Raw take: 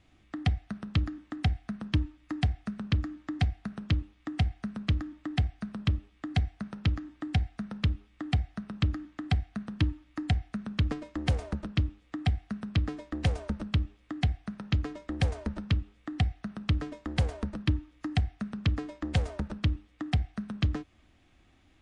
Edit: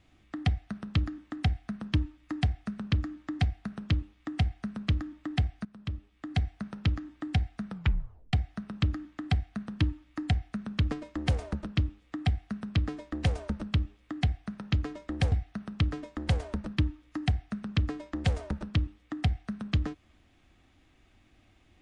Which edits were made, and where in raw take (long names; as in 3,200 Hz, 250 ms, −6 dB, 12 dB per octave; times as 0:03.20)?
0:05.65–0:06.49: fade in linear, from −16.5 dB
0:07.70: tape stop 0.63 s
0:15.32–0:16.21: remove